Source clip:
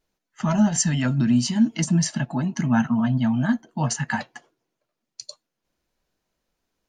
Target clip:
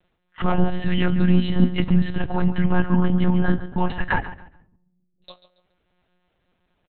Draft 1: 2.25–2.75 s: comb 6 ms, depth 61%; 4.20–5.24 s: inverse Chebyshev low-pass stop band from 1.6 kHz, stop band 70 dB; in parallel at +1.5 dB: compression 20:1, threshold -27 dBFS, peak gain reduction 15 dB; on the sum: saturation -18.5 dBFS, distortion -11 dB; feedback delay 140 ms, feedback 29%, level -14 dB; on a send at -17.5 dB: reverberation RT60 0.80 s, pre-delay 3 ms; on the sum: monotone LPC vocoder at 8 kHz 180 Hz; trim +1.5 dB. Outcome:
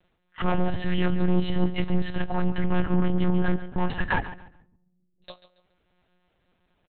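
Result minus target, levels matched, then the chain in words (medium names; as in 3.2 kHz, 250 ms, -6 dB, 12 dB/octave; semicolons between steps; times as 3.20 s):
saturation: distortion +15 dB
2.25–2.75 s: comb 6 ms, depth 61%; 4.20–5.24 s: inverse Chebyshev low-pass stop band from 1.6 kHz, stop band 70 dB; in parallel at +1.5 dB: compression 20:1, threshold -27 dBFS, peak gain reduction 15 dB; on the sum: saturation -7 dBFS, distortion -27 dB; feedback delay 140 ms, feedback 29%, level -14 dB; on a send at -17.5 dB: reverberation RT60 0.80 s, pre-delay 3 ms; on the sum: monotone LPC vocoder at 8 kHz 180 Hz; trim +1.5 dB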